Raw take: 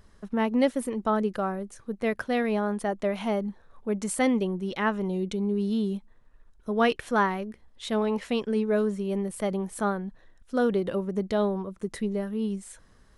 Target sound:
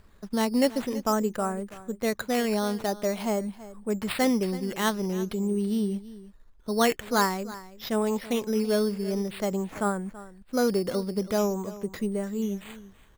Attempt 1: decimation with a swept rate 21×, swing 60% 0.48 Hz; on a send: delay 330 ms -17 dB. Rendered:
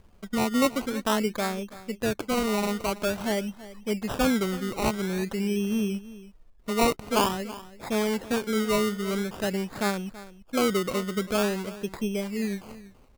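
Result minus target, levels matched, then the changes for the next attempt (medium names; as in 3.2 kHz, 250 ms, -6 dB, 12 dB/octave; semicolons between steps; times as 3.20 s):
decimation with a swept rate: distortion +9 dB
change: decimation with a swept rate 7×, swing 60% 0.48 Hz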